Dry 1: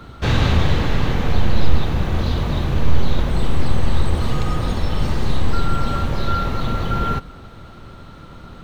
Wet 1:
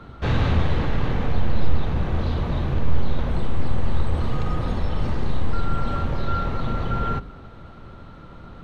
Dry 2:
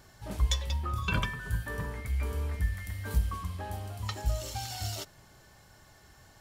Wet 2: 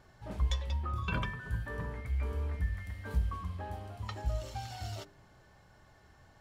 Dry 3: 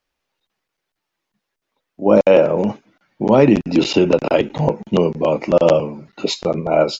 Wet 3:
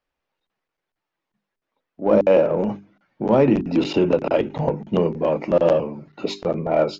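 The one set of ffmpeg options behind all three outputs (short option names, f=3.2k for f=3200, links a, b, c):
-filter_complex "[0:a]lowpass=f=2k:p=1,bandreject=f=50:t=h:w=6,bandreject=f=100:t=h:w=6,bandreject=f=150:t=h:w=6,bandreject=f=200:t=h:w=6,bandreject=f=250:t=h:w=6,bandreject=f=300:t=h:w=6,bandreject=f=350:t=h:w=6,bandreject=f=400:t=h:w=6,asplit=2[a][b];[b]asoftclip=type=tanh:threshold=-18.5dB,volume=-8.5dB[c];[a][c]amix=inputs=2:normalize=0,volume=-4.5dB"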